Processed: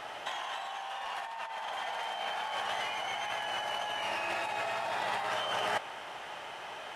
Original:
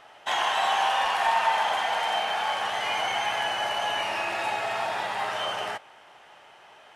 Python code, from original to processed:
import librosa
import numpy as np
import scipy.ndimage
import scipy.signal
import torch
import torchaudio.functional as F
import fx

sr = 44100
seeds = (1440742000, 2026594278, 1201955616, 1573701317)

y = fx.over_compress(x, sr, threshold_db=-36.0, ratio=-1.0)